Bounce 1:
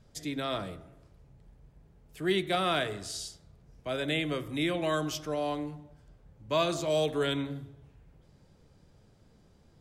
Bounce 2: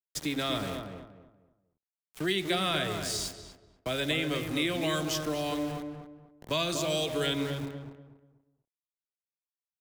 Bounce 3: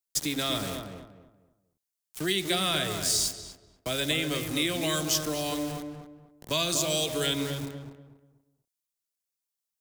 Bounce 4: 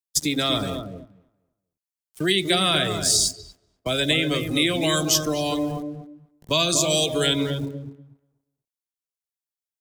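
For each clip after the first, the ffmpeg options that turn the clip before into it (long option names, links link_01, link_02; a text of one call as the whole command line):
ffmpeg -i in.wav -filter_complex "[0:a]aeval=exprs='val(0)*gte(abs(val(0)),0.00668)':channel_layout=same,acrossover=split=270|2000[link_01][link_02][link_03];[link_01]acompressor=threshold=-44dB:ratio=4[link_04];[link_02]acompressor=threshold=-40dB:ratio=4[link_05];[link_03]acompressor=threshold=-36dB:ratio=4[link_06];[link_04][link_05][link_06]amix=inputs=3:normalize=0,asplit=2[link_07][link_08];[link_08]adelay=242,lowpass=frequency=1500:poles=1,volume=-5.5dB,asplit=2[link_09][link_10];[link_10]adelay=242,lowpass=frequency=1500:poles=1,volume=0.3,asplit=2[link_11][link_12];[link_12]adelay=242,lowpass=frequency=1500:poles=1,volume=0.3,asplit=2[link_13][link_14];[link_14]adelay=242,lowpass=frequency=1500:poles=1,volume=0.3[link_15];[link_07][link_09][link_11][link_13][link_15]amix=inputs=5:normalize=0,volume=6.5dB" out.wav
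ffmpeg -i in.wav -af "bass=frequency=250:gain=1,treble=frequency=4000:gain=10" out.wav
ffmpeg -i in.wav -af "afftdn=noise_reduction=15:noise_floor=-38,volume=7dB" out.wav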